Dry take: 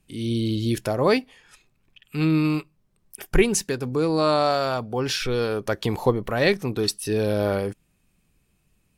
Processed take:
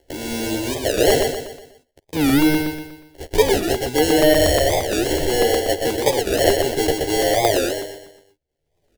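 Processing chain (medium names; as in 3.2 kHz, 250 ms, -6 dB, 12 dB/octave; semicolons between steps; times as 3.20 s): gate -45 dBFS, range -47 dB; bass shelf 150 Hz -9 dB; in parallel at +1 dB: peak limiter -16 dBFS, peak gain reduction 9 dB; on the sum: upward compressor, threshold -21 dBFS; sample-and-hold 36×; static phaser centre 470 Hz, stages 4; doubling 13 ms -3 dB; feedback delay 126 ms, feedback 42%, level -4.5 dB; crackling interface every 0.12 s, samples 128, repeat, from 0.98 s; warped record 45 rpm, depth 250 cents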